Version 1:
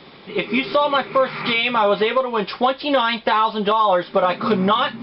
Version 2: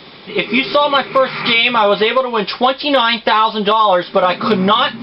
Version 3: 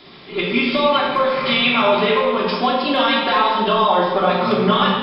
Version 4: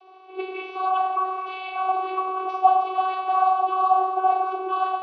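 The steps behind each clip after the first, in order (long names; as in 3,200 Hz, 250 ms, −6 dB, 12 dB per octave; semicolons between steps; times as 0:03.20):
high-shelf EQ 3,400 Hz +8.5 dB; level +4 dB
rectangular room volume 1,400 cubic metres, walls mixed, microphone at 3.1 metres; level −9 dB
speech leveller within 3 dB 0.5 s; channel vocoder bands 16, saw 376 Hz; formant filter a; level +2 dB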